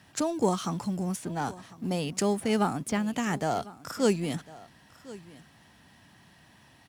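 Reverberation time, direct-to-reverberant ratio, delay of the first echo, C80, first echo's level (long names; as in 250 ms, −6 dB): no reverb audible, no reverb audible, 1,052 ms, no reverb audible, −19.5 dB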